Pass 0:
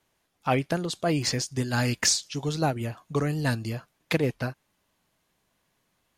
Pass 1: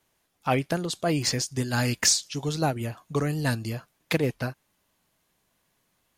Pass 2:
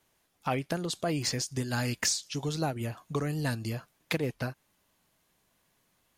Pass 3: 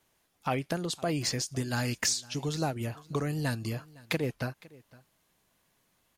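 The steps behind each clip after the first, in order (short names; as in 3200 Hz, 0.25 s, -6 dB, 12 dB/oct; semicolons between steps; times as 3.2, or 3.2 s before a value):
high shelf 8500 Hz +6 dB
compressor 2:1, threshold -31 dBFS, peak gain reduction 8 dB
echo 0.509 s -22.5 dB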